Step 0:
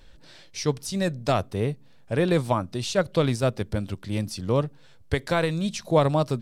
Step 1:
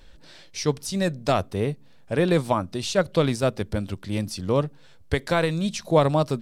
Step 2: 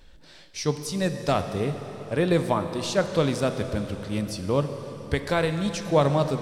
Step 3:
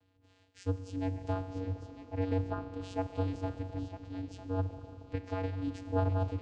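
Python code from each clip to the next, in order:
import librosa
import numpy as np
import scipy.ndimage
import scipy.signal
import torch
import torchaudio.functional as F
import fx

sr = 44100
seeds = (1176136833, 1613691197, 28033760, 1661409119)

y1 = fx.peak_eq(x, sr, hz=120.0, db=-6.5, octaves=0.23)
y1 = y1 * librosa.db_to_amplitude(1.5)
y2 = fx.rev_plate(y1, sr, seeds[0], rt60_s=4.2, hf_ratio=0.85, predelay_ms=0, drr_db=7.5)
y2 = y2 * librosa.db_to_amplitude(-2.0)
y3 = fx.vocoder(y2, sr, bands=8, carrier='square', carrier_hz=94.2)
y3 = y3 + 10.0 ** (-11.5 / 20.0) * np.pad(y3, (int(950 * sr / 1000.0), 0))[:len(y3)]
y3 = y3 * librosa.db_to_amplitude(-8.0)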